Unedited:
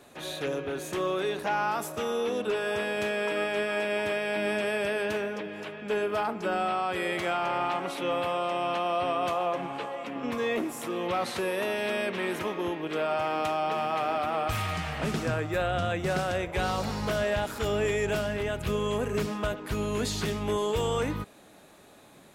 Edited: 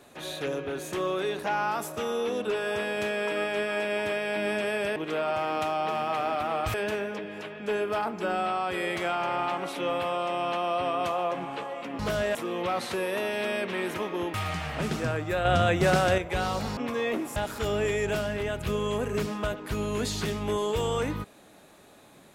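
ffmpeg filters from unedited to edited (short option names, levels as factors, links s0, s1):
-filter_complex "[0:a]asplit=10[s0][s1][s2][s3][s4][s5][s6][s7][s8][s9];[s0]atrim=end=4.962[s10];[s1]atrim=start=12.788:end=14.572[s11];[s2]atrim=start=4.958:end=10.212[s12];[s3]atrim=start=16.998:end=17.362[s13];[s4]atrim=start=10.798:end=12.792[s14];[s5]atrim=start=14.568:end=15.682[s15];[s6]atrim=start=15.678:end=16.412,asetpts=PTS-STARTPTS,volume=2[s16];[s7]atrim=start=16.408:end=17.002[s17];[s8]atrim=start=10.208:end=10.802[s18];[s9]atrim=start=17.358[s19];[s10][s11]acrossfade=d=0.004:c1=hsin:c2=hsin[s20];[s20][s12]acrossfade=d=0.004:c1=hsin:c2=hsin[s21];[s21][s13]acrossfade=d=0.004:c1=hsin:c2=hsin[s22];[s22][s14]acrossfade=d=0.004:c1=hsin:c2=hsin[s23];[s23][s15]acrossfade=d=0.004:c1=hsin:c2=hsin[s24];[s24][s16]acrossfade=d=0.004:c1=hsin:c2=hsin[s25];[s25][s17]acrossfade=d=0.004:c1=hsin:c2=hsin[s26];[s26][s18]acrossfade=d=0.004:c1=hsin:c2=hsin[s27];[s27][s19]acrossfade=d=0.004:c1=hsin:c2=hsin"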